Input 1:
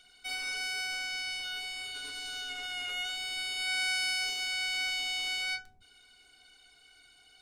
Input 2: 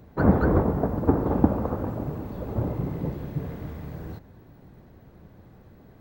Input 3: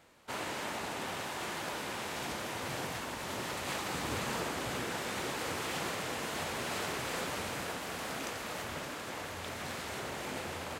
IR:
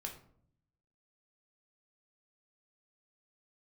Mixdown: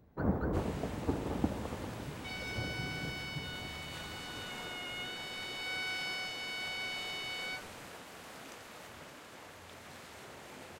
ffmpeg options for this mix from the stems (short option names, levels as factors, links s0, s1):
-filter_complex "[0:a]lowpass=4200,adelay=2000,volume=0.501[s0];[1:a]volume=0.224[s1];[2:a]adelay=250,volume=0.299[s2];[s0][s1][s2]amix=inputs=3:normalize=0"